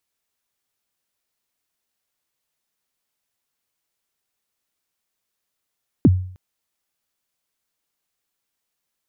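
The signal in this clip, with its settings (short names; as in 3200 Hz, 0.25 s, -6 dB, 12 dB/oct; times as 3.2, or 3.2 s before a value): kick drum length 0.31 s, from 350 Hz, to 92 Hz, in 37 ms, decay 0.53 s, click off, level -6 dB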